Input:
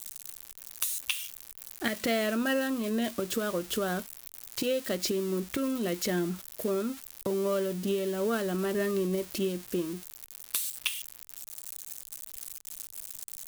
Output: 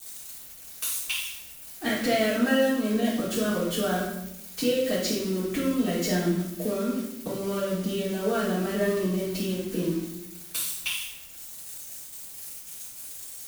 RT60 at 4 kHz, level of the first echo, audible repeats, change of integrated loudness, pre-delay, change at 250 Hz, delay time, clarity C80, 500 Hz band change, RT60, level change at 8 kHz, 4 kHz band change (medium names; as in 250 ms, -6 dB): 0.70 s, no echo, no echo, +4.0 dB, 3 ms, +5.0 dB, no echo, 5.5 dB, +3.0 dB, 0.85 s, +2.5 dB, +3.5 dB